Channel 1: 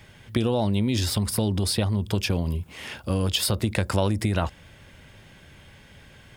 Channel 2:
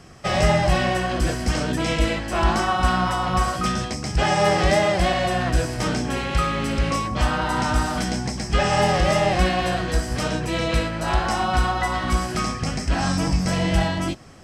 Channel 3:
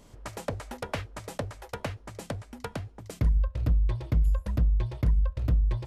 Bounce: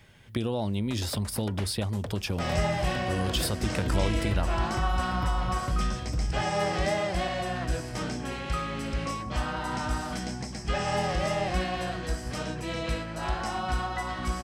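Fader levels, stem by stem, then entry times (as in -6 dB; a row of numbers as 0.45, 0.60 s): -6.0, -9.0, -5.5 dB; 0.00, 2.15, 0.65 s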